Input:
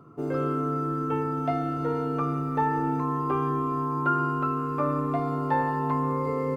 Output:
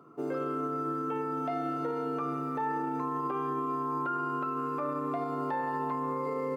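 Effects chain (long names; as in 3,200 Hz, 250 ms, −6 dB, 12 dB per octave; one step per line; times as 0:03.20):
high-pass filter 250 Hz 12 dB per octave
brickwall limiter −23 dBFS, peak gain reduction 9 dB
level −1.5 dB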